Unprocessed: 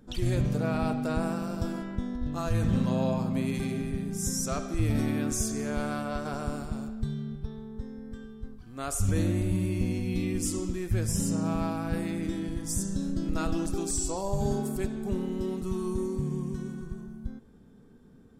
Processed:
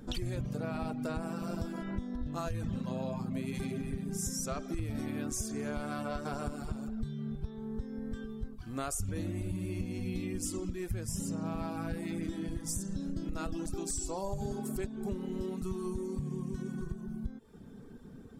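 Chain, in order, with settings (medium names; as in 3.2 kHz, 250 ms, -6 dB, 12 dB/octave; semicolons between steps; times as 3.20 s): reverb removal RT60 0.58 s; compression 6:1, threshold -40 dBFS, peak gain reduction 17.5 dB; trim +6.5 dB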